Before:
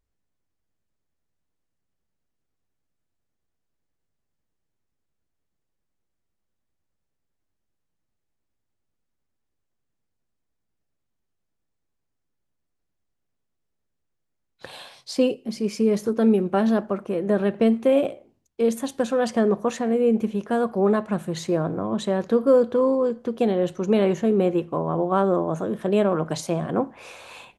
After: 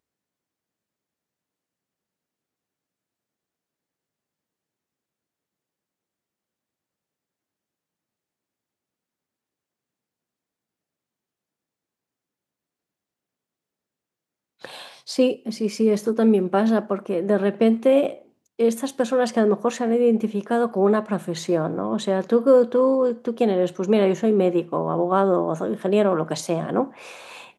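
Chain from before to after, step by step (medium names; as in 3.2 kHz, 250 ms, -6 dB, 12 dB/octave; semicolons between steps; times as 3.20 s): high-pass 170 Hz 12 dB/octave; trim +2 dB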